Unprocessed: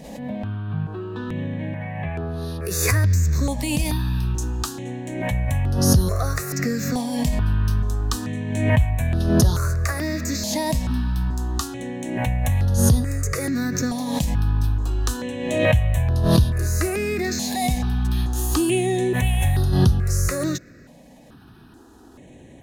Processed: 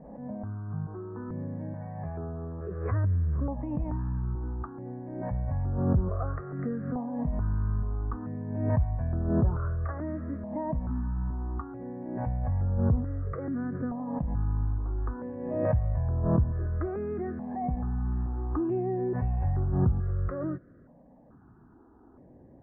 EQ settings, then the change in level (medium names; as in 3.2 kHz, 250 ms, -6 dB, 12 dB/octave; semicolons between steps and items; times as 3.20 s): steep low-pass 1.4 kHz 36 dB/octave; -8.0 dB